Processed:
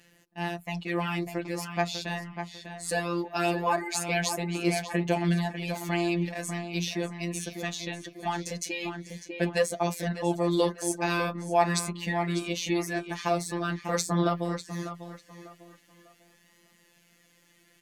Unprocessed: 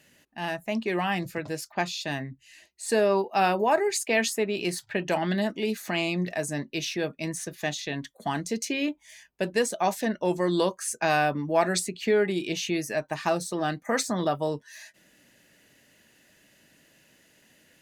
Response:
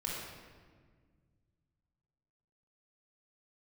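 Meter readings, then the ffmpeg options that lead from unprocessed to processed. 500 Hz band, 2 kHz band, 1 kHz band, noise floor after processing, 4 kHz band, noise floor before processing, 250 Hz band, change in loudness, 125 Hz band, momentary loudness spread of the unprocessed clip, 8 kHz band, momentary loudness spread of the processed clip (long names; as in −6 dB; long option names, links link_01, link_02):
−4.0 dB, −2.5 dB, −2.5 dB, −63 dBFS, −2.0 dB, −62 dBFS, −0.5 dB, −2.5 dB, +3.0 dB, 9 LU, −1.5 dB, 10 LU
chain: -filter_complex "[0:a]afftfilt=real='hypot(re,im)*cos(PI*b)':imag='0':win_size=1024:overlap=0.75,asplit=2[link_01][link_02];[link_02]adelay=597,lowpass=frequency=3300:poles=1,volume=-7.5dB,asplit=2[link_03][link_04];[link_04]adelay=597,lowpass=frequency=3300:poles=1,volume=0.31,asplit=2[link_05][link_06];[link_06]adelay=597,lowpass=frequency=3300:poles=1,volume=0.31,asplit=2[link_07][link_08];[link_08]adelay=597,lowpass=frequency=3300:poles=1,volume=0.31[link_09];[link_01][link_03][link_05][link_07][link_09]amix=inputs=5:normalize=0,aphaser=in_gain=1:out_gain=1:delay=4.8:decay=0.34:speed=0.21:type=sinusoidal,volume=1dB"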